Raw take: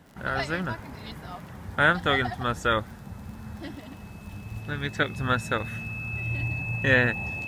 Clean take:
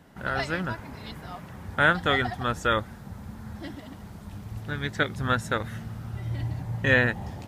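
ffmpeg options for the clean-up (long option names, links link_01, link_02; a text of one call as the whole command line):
ffmpeg -i in.wav -af "adeclick=threshold=4,bandreject=frequency=2600:width=30" out.wav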